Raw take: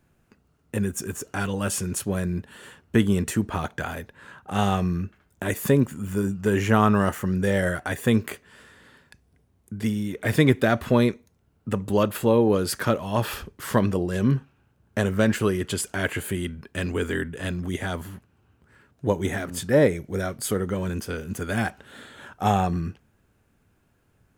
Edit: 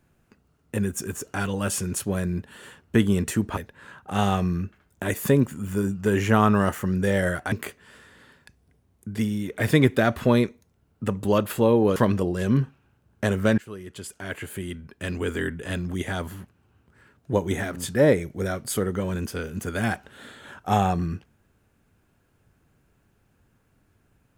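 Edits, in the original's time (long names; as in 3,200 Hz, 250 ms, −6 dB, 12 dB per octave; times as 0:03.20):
0:03.57–0:03.97: remove
0:07.92–0:08.17: remove
0:12.61–0:13.70: remove
0:15.32–0:17.32: fade in, from −20 dB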